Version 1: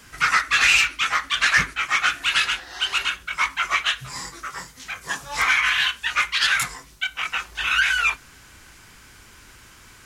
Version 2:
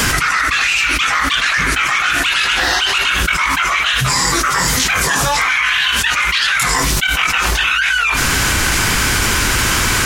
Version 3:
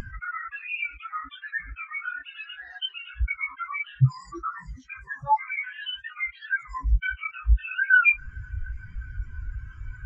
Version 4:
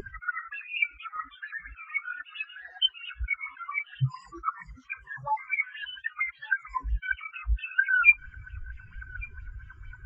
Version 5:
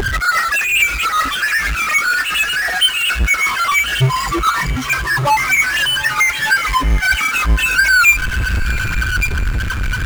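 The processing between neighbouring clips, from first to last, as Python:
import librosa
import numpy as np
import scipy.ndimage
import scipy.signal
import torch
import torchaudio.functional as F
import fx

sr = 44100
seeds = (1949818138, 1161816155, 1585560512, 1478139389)

y1 = fx.env_flatten(x, sr, amount_pct=100)
y1 = y1 * 10.0 ** (-1.0 / 20.0)
y2 = fx.spectral_expand(y1, sr, expansion=4.0)
y2 = y2 * 10.0 ** (-7.0 / 20.0)
y3 = y2 + 10.0 ** (-24.0 / 20.0) * np.pad(y2, (int(1162 * sr / 1000.0), 0))[:len(y2)]
y3 = fx.bell_lfo(y3, sr, hz=4.4, low_hz=390.0, high_hz=3400.0, db=16)
y3 = y3 * 10.0 ** (-8.0 / 20.0)
y4 = fx.power_curve(y3, sr, exponent=0.35)
y4 = fx.echo_diffused(y4, sr, ms=786, feedback_pct=41, wet_db=-15.0)
y4 = y4 * 10.0 ** (3.0 / 20.0)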